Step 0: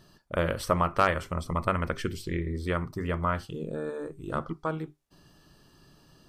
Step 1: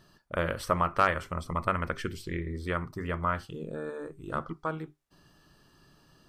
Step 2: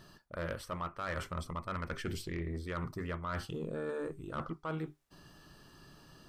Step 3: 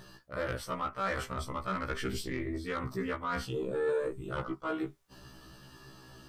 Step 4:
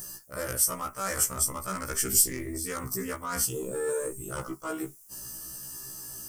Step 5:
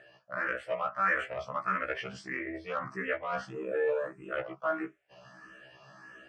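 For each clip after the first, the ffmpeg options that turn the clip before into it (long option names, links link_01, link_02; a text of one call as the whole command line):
ffmpeg -i in.wav -af "equalizer=frequency=1500:width=0.94:gain=4,volume=-3.5dB" out.wav
ffmpeg -i in.wav -af "areverse,acompressor=threshold=-36dB:ratio=10,areverse,asoftclip=type=tanh:threshold=-32.5dB,volume=3.5dB" out.wav
ffmpeg -i in.wav -af "afftfilt=real='re*1.73*eq(mod(b,3),0)':imag='im*1.73*eq(mod(b,3),0)':win_size=2048:overlap=0.75,volume=7dB" out.wav
ffmpeg -i in.wav -af "aexciter=amount=16:drive=7.4:freq=5900" out.wav
ffmpeg -i in.wav -filter_complex "[0:a]dynaudnorm=framelen=110:gausssize=3:maxgain=5dB,highpass=230,equalizer=frequency=250:width_type=q:width=4:gain=-10,equalizer=frequency=380:width_type=q:width=4:gain=-8,equalizer=frequency=640:width_type=q:width=4:gain=8,equalizer=frequency=910:width_type=q:width=4:gain=-5,equalizer=frequency=1700:width_type=q:width=4:gain=6,equalizer=frequency=2600:width_type=q:width=4:gain=5,lowpass=frequency=2700:width=0.5412,lowpass=frequency=2700:width=1.3066,asplit=2[link_01][link_02];[link_02]afreqshift=1.6[link_03];[link_01][link_03]amix=inputs=2:normalize=1" out.wav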